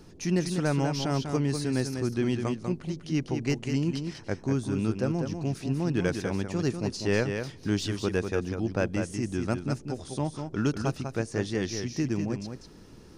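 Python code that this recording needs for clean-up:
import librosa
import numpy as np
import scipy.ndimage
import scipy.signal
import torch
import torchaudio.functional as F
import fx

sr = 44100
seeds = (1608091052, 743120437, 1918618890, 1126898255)

y = fx.fix_declip(x, sr, threshold_db=-15.0)
y = fx.noise_reduce(y, sr, print_start_s=12.66, print_end_s=13.16, reduce_db=28.0)
y = fx.fix_echo_inverse(y, sr, delay_ms=196, level_db=-6.5)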